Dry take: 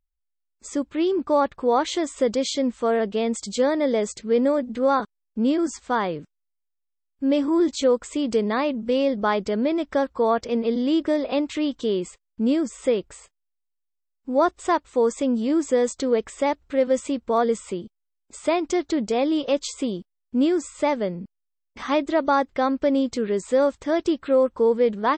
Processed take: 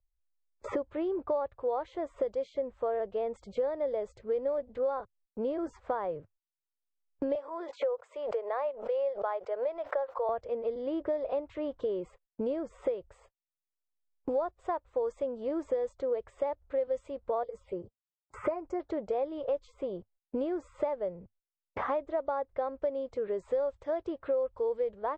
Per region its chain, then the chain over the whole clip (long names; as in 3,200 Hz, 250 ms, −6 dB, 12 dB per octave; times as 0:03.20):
0:07.35–0:10.29: high-pass filter 510 Hz 24 dB per octave + background raised ahead of every attack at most 110 dB per second
0:17.43–0:18.80: notch comb filter 230 Hz + phaser swept by the level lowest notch 420 Hz, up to 3,600 Hz, full sweep at −27.5 dBFS
whole clip: noise gate −52 dBFS, range −24 dB; drawn EQ curve 100 Hz 0 dB, 230 Hz −23 dB, 540 Hz −2 dB, 8,100 Hz −30 dB; multiband upward and downward compressor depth 100%; level −4.5 dB